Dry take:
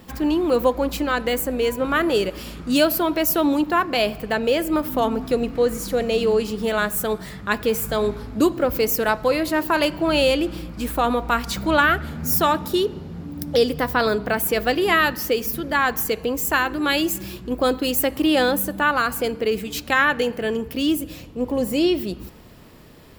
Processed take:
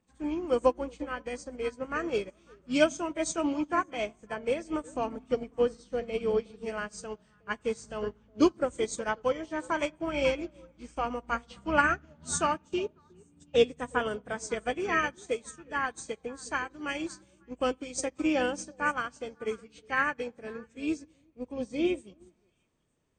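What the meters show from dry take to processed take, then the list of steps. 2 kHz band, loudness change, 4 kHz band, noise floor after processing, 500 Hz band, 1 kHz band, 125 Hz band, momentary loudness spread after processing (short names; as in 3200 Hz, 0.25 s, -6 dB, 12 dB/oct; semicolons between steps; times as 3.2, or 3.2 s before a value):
-10.0 dB, -10.0 dB, -14.5 dB, -66 dBFS, -9.5 dB, -9.5 dB, -14.0 dB, 12 LU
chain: nonlinear frequency compression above 1700 Hz 1.5:1; delay with a stepping band-pass 0.182 s, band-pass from 180 Hz, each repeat 1.4 oct, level -8 dB; upward expander 2.5:1, over -31 dBFS; gain -3.5 dB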